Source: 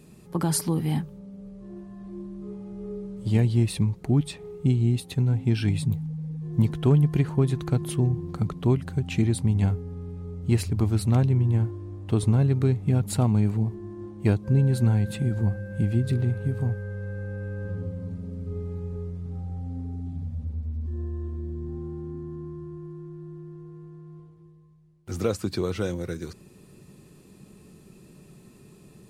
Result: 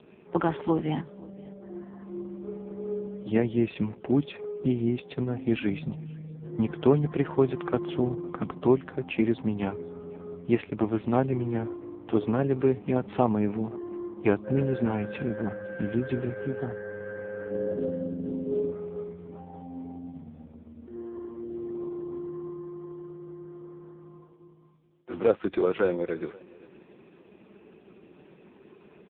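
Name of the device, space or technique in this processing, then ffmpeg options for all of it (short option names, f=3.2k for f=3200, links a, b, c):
satellite phone: -filter_complex "[0:a]asplit=3[a][b][c];[a]afade=t=out:st=17.5:d=0.02[d];[b]equalizer=f=250:t=o:w=1:g=10,equalizer=f=500:t=o:w=1:g=6,equalizer=f=1k:t=o:w=1:g=-8,equalizer=f=2k:t=o:w=1:g=-4,equalizer=f=4k:t=o:w=1:g=-7,equalizer=f=8k:t=o:w=1:g=-7,afade=t=in:st=17.5:d=0.02,afade=t=out:st=18.7:d=0.02[e];[c]afade=t=in:st=18.7:d=0.02[f];[d][e][f]amix=inputs=3:normalize=0,highpass=350,lowpass=3.1k,aecho=1:1:516:0.0631,volume=7.5dB" -ar 8000 -c:a libopencore_amrnb -b:a 4750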